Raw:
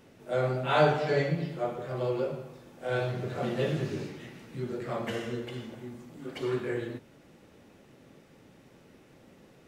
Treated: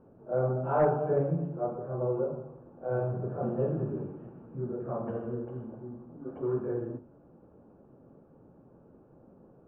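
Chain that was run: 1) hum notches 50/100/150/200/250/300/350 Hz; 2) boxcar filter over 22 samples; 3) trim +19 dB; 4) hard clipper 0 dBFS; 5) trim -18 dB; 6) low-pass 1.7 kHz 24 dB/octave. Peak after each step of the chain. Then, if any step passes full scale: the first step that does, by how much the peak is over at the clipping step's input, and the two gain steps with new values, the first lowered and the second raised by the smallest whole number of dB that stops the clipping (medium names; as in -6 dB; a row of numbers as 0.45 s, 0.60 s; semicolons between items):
-10.5 dBFS, -13.5 dBFS, +5.5 dBFS, 0.0 dBFS, -18.0 dBFS, -17.0 dBFS; step 3, 5.5 dB; step 3 +13 dB, step 5 -12 dB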